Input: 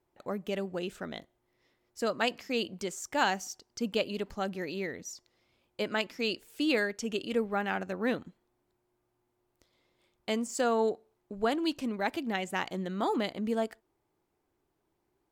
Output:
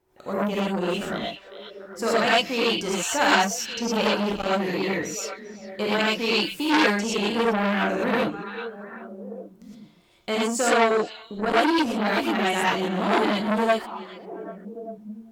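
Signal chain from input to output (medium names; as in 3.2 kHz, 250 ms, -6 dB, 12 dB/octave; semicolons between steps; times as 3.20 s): repeats whose band climbs or falls 394 ms, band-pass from 3.2 kHz, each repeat -1.4 oct, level -9 dB; gated-style reverb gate 140 ms rising, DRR -7 dB; transformer saturation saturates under 2.1 kHz; trim +4.5 dB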